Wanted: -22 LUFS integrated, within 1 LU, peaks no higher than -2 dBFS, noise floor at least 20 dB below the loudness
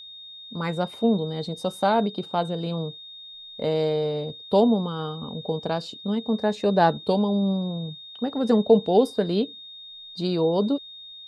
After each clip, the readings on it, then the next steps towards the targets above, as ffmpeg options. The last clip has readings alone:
steady tone 3700 Hz; tone level -40 dBFS; loudness -24.5 LUFS; peak -5.0 dBFS; loudness target -22.0 LUFS
-> -af "bandreject=f=3.7k:w=30"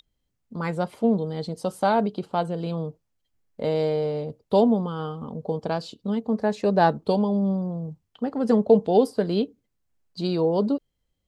steady tone none; loudness -24.5 LUFS; peak -5.0 dBFS; loudness target -22.0 LUFS
-> -af "volume=2.5dB"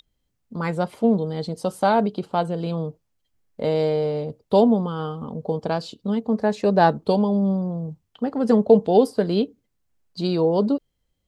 loudness -22.0 LUFS; peak -2.5 dBFS; noise floor -74 dBFS

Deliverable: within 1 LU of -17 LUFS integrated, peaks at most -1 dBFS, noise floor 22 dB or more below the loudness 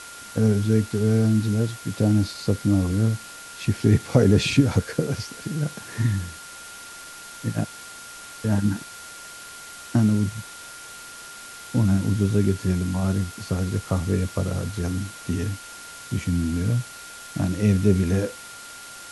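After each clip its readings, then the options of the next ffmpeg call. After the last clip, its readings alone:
steady tone 1400 Hz; tone level -42 dBFS; noise floor -41 dBFS; noise floor target -46 dBFS; loudness -23.5 LUFS; peak -3.0 dBFS; loudness target -17.0 LUFS
-> -af "bandreject=f=1.4k:w=30"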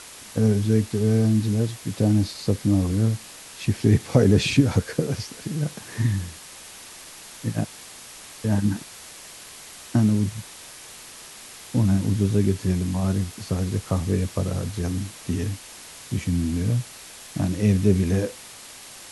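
steady tone none; noise floor -43 dBFS; noise floor target -46 dBFS
-> -af "afftdn=nr=6:nf=-43"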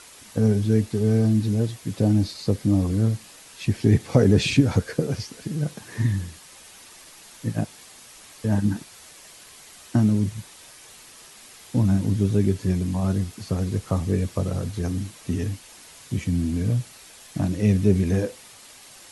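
noise floor -47 dBFS; loudness -24.0 LUFS; peak -3.0 dBFS; loudness target -17.0 LUFS
-> -af "volume=7dB,alimiter=limit=-1dB:level=0:latency=1"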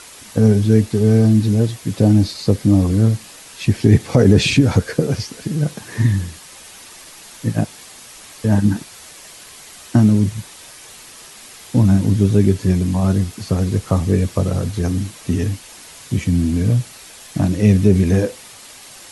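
loudness -17.0 LUFS; peak -1.0 dBFS; noise floor -40 dBFS

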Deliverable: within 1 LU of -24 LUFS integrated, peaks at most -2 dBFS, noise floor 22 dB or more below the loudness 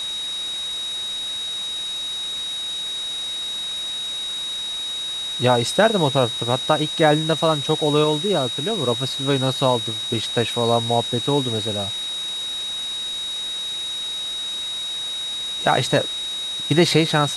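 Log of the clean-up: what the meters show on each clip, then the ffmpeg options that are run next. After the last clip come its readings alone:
steady tone 3800 Hz; tone level -25 dBFS; noise floor -28 dBFS; noise floor target -44 dBFS; loudness -21.5 LUFS; peak -2.0 dBFS; loudness target -24.0 LUFS
-> -af "bandreject=f=3.8k:w=30"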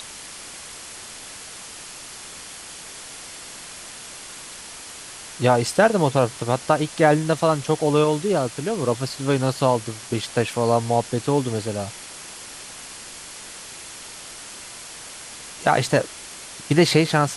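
steady tone none; noise floor -39 dBFS; noise floor target -43 dBFS
-> -af "afftdn=nr=6:nf=-39"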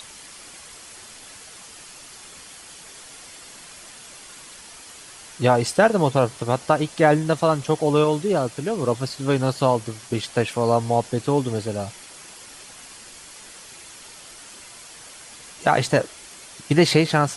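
noise floor -43 dBFS; loudness -21.0 LUFS; peak -3.0 dBFS; loudness target -24.0 LUFS
-> -af "volume=-3dB"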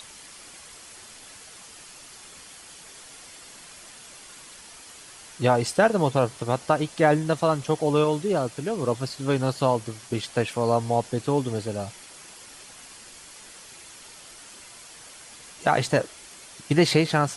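loudness -24.0 LUFS; peak -6.0 dBFS; noise floor -46 dBFS

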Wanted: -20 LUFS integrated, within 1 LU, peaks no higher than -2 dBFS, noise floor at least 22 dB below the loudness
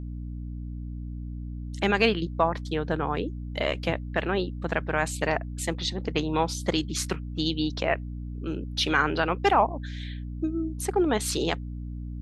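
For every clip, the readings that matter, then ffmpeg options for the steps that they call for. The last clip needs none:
hum 60 Hz; harmonics up to 300 Hz; hum level -32 dBFS; loudness -28.0 LUFS; peak -7.5 dBFS; loudness target -20.0 LUFS
-> -af "bandreject=f=60:t=h:w=6,bandreject=f=120:t=h:w=6,bandreject=f=180:t=h:w=6,bandreject=f=240:t=h:w=6,bandreject=f=300:t=h:w=6"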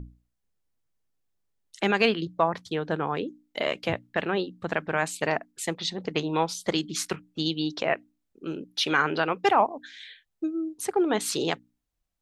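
hum none; loudness -27.5 LUFS; peak -7.5 dBFS; loudness target -20.0 LUFS
-> -af "volume=7.5dB,alimiter=limit=-2dB:level=0:latency=1"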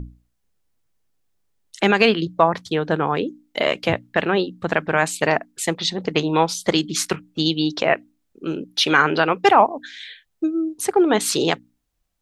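loudness -20.5 LUFS; peak -2.0 dBFS; noise floor -72 dBFS

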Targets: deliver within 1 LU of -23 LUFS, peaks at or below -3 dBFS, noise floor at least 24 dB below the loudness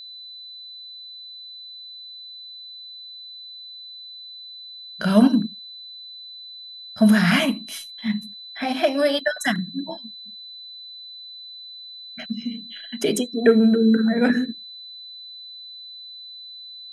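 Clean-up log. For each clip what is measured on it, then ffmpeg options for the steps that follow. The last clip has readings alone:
steady tone 4000 Hz; tone level -37 dBFS; loudness -21.0 LUFS; peak -3.5 dBFS; loudness target -23.0 LUFS
-> -af "bandreject=f=4k:w=30"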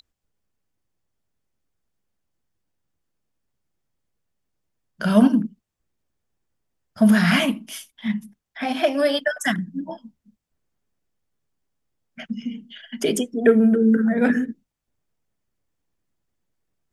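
steady tone none; loudness -20.5 LUFS; peak -3.5 dBFS; loudness target -23.0 LUFS
-> -af "volume=-2.5dB"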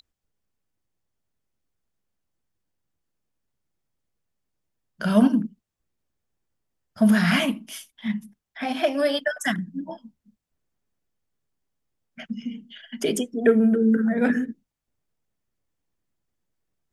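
loudness -23.0 LUFS; peak -6.0 dBFS; noise floor -83 dBFS

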